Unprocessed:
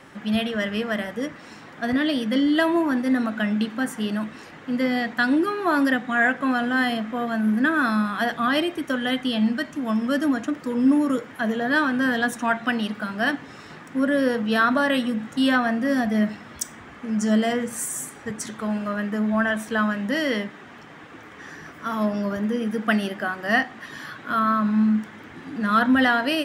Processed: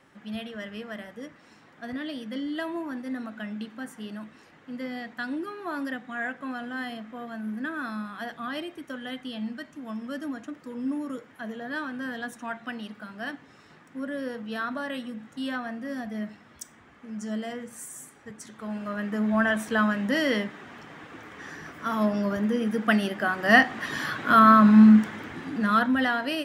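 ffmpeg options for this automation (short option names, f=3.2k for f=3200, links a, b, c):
-af "volume=6dB,afade=t=in:st=18.49:d=0.97:silence=0.281838,afade=t=in:st=23.14:d=0.74:silence=0.446684,afade=t=out:st=24.94:d=0.98:silence=0.251189"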